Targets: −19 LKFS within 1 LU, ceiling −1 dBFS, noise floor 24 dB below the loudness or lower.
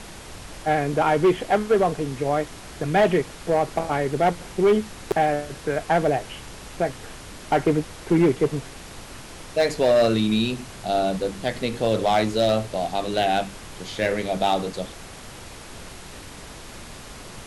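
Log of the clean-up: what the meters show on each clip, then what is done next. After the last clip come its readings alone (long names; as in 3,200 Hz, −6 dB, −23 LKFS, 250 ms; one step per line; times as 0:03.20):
share of clipped samples 0.8%; peaks flattened at −12.5 dBFS; background noise floor −41 dBFS; target noise floor −47 dBFS; integrated loudness −23.0 LKFS; sample peak −12.5 dBFS; target loudness −19.0 LKFS
→ clipped peaks rebuilt −12.5 dBFS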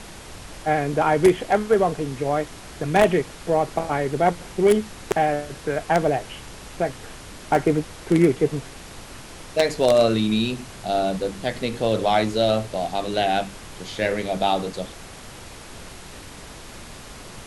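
share of clipped samples 0.0%; background noise floor −41 dBFS; target noise floor −47 dBFS
→ noise reduction from a noise print 6 dB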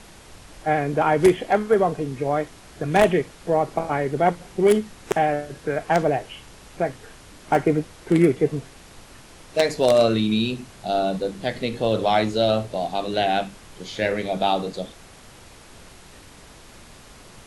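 background noise floor −47 dBFS; integrated loudness −22.5 LKFS; sample peak −3.5 dBFS; target loudness −19.0 LKFS
→ level +3.5 dB
brickwall limiter −1 dBFS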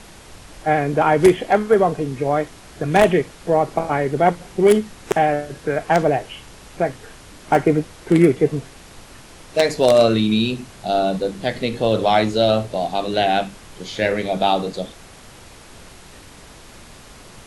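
integrated loudness −19.0 LKFS; sample peak −1.0 dBFS; background noise floor −43 dBFS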